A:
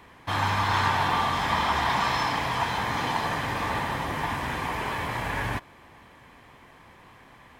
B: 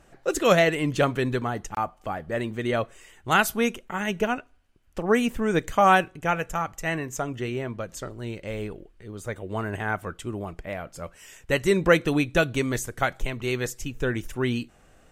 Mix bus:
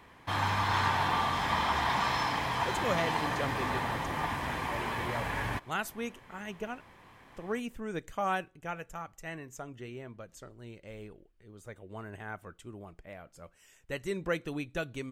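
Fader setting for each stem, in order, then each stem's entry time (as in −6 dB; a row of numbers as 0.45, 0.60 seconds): −4.5, −13.5 decibels; 0.00, 2.40 seconds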